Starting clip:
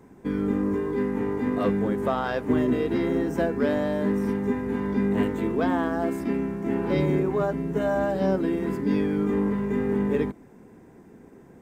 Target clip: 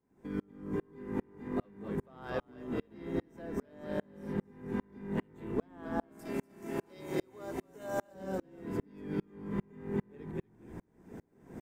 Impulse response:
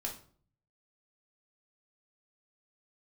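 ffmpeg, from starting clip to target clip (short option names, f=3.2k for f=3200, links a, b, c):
-filter_complex "[0:a]asettb=1/sr,asplit=3[a][b][c];[a]atrim=end=6.194[d];[b]atrim=start=6.19:end=8.14,asetpts=PTS-STARTPTS,afade=t=in:d=0.004:c=qsin,afade=t=out:st=1.946:d=0.004:c=qsin,bass=f=250:g=-12,treble=f=4k:g=14[e];[c]atrim=start=8.136[f];[d][e]acrossfade=d=0.004:c1=hsin:c2=qsin[g];[g][f]acrossfade=d=0.004:c1=qsin:c2=hsin,acompressor=threshold=-37dB:ratio=3,asplit=6[h][i][j][k][l][m];[i]adelay=240,afreqshift=-42,volume=-6dB[n];[j]adelay=480,afreqshift=-84,volume=-13.5dB[o];[k]adelay=720,afreqshift=-126,volume=-21.1dB[p];[l]adelay=960,afreqshift=-168,volume=-28.6dB[q];[m]adelay=1200,afreqshift=-210,volume=-36.1dB[r];[h][n][o][p][q][r]amix=inputs=6:normalize=0,aeval=exprs='val(0)*pow(10,-38*if(lt(mod(-2.5*n/s,1),2*abs(-2.5)/1000),1-mod(-2.5*n/s,1)/(2*abs(-2.5)/1000),(mod(-2.5*n/s,1)-2*abs(-2.5)/1000)/(1-2*abs(-2.5)/1000))/20)':c=same,volume=6dB"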